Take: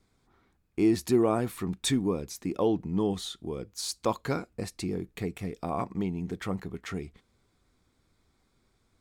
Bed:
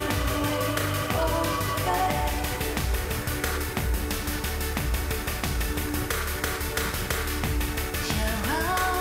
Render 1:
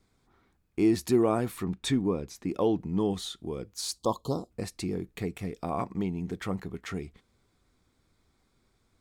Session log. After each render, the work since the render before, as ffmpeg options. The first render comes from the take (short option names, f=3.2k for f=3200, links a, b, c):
-filter_complex "[0:a]asettb=1/sr,asplit=3[a][b][c];[a]atrim=end=1.644[d];[b]atrim=start=1.64:end=2.49,asetpts=PTS-STARTPTS,afade=t=in:d=0.004:c=qsin,afade=t=out:st=0.846:d=0.004:c=qsin,aemphasis=mode=reproduction:type=cd[e];[c]atrim=start=2.486[f];[d][e]acrossfade=d=0.004:c1=hsin:c2=qsin[g];[g][f]acrossfade=d=0.004:c1=qsin:c2=hsin,asettb=1/sr,asplit=3[h][i][j];[h]atrim=end=3.984[k];[i]atrim=start=3.98:end=4.51,asetpts=PTS-STARTPTS,afade=t=in:d=0.004:c=qsin,afade=t=out:st=0.526:d=0.004:c=qsin,asuperstop=centerf=1900:order=12:qfactor=1[l];[j]atrim=start=4.506[m];[k][l]acrossfade=d=0.004:c1=hsin:c2=qsin[n];[n][m]acrossfade=d=0.004:c1=qsin:c2=hsin"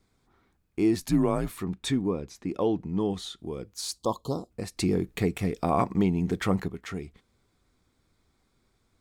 -filter_complex "[0:a]asettb=1/sr,asplit=3[a][b][c];[a]atrim=end=1.004[d];[b]atrim=start=1:end=1.5,asetpts=PTS-STARTPTS,afade=t=in:d=0.004:c=qsin,afade=t=out:st=0.496:d=0.004:c=qsin,afreqshift=-83[e];[c]atrim=start=1.496[f];[d][e]acrossfade=d=0.004:c1=hsin:c2=qsin[g];[g][f]acrossfade=d=0.004:c1=qsin:c2=hsin,asettb=1/sr,asplit=3[h][i][j];[h]atrim=end=2.114[k];[i]atrim=start=2.11:end=3.39,asetpts=PTS-STARTPTS,afade=t=in:d=0.004:c=qsin,afade=t=out:st=1.276:d=0.004:c=qsin,highshelf=f=10k:g=-8.5[l];[j]atrim=start=3.386[m];[k][l]acrossfade=d=0.004:c1=hsin:c2=qsin[n];[n][m]acrossfade=d=0.004:c1=qsin:c2=hsin,asplit=3[o][p][q];[o]atrim=end=4.772[r];[p]atrim=start=4.768:end=6.682,asetpts=PTS-STARTPTS,volume=7dB[s];[q]atrim=start=6.678[t];[r][s]acrossfade=d=0.004:c1=hsin:c2=hsin[u];[u][t]acrossfade=d=0.004:c1=hsin:c2=hsin"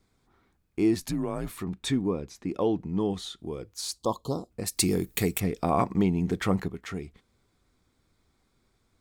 -filter_complex "[0:a]asettb=1/sr,asplit=3[a][b][c];[a]atrim=end=0.944[d];[b]atrim=start=0.94:end=1.79,asetpts=PTS-STARTPTS,afade=t=in:d=0.004:c=qsin,afade=t=out:st=0.846:d=0.004:c=qsin,acompressor=threshold=-27dB:ratio=3:attack=3.2:release=140:knee=1:detection=peak[e];[c]atrim=start=1.786[f];[d][e]acrossfade=d=0.004:c1=hsin:c2=qsin[g];[g][f]acrossfade=d=0.004:c1=qsin:c2=hsin,asettb=1/sr,asplit=3[h][i][j];[h]atrim=end=3.564[k];[i]atrim=start=3.56:end=4.01,asetpts=PTS-STARTPTS,afade=t=in:d=0.004:c=qsin,afade=t=out:st=0.446:d=0.004:c=qsin,equalizer=f=210:t=o:w=0.29:g=-14[l];[j]atrim=start=4.006[m];[k][l]acrossfade=d=0.004:c1=hsin:c2=qsin[n];[n][m]acrossfade=d=0.004:c1=qsin:c2=hsin,asettb=1/sr,asplit=3[o][p][q];[o]atrim=end=4.664[r];[p]atrim=start=4.66:end=5.4,asetpts=PTS-STARTPTS,afade=t=in:d=0.004:c=qsin,afade=t=out:st=0.736:d=0.004:c=qsin,aemphasis=mode=production:type=75fm[s];[q]atrim=start=5.396[t];[r][s]acrossfade=d=0.004:c1=hsin:c2=qsin[u];[u][t]acrossfade=d=0.004:c1=qsin:c2=hsin"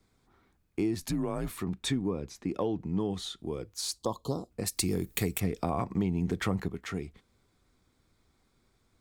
-filter_complex "[0:a]acrossover=split=120[a][b];[b]acompressor=threshold=-27dB:ratio=6[c];[a][c]amix=inputs=2:normalize=0"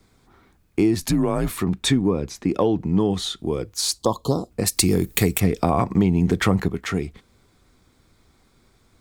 -af "volume=11dB,alimiter=limit=-3dB:level=0:latency=1"